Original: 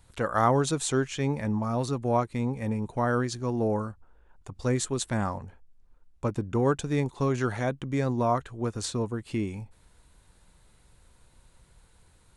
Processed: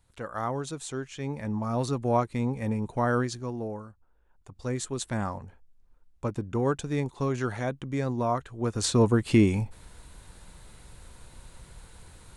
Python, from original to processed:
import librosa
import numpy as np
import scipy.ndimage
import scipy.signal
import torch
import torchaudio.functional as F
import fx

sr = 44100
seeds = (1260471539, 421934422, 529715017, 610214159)

y = fx.gain(x, sr, db=fx.line((1.03, -8.5), (1.81, 0.5), (3.21, 0.5), (3.83, -11.0), (5.12, -2.0), (8.5, -2.0), (9.08, 10.0)))